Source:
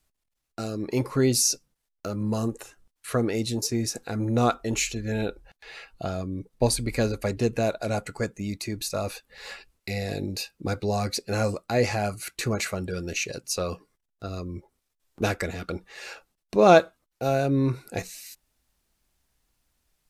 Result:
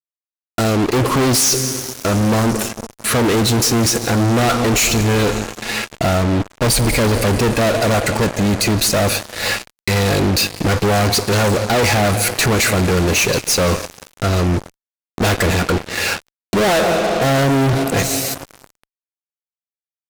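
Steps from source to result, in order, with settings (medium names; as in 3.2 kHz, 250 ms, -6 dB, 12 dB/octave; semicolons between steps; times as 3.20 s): echo from a far wall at 30 m, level -22 dB; plate-style reverb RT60 4.5 s, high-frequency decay 0.9×, DRR 17 dB; fuzz box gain 41 dB, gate -44 dBFS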